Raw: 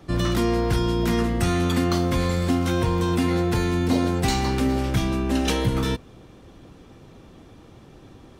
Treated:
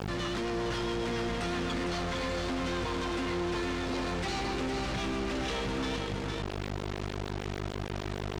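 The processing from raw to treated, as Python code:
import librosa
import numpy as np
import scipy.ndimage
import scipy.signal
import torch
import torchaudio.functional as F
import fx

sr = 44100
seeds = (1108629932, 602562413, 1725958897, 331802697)

y = fx.highpass(x, sr, hz=180.0, slope=6)
y = fx.low_shelf(y, sr, hz=440.0, db=-9.5)
y = fx.add_hum(y, sr, base_hz=50, snr_db=10)
y = fx.rotary(y, sr, hz=7.5)
y = fx.quant_companded(y, sr, bits=2)
y = fx.air_absorb(y, sr, metres=110.0)
y = y + 10.0 ** (-5.5 / 20.0) * np.pad(y, (int(457 * sr / 1000.0), 0))[:len(y)]
y = fx.env_flatten(y, sr, amount_pct=50)
y = y * 10.0 ** (-7.5 / 20.0)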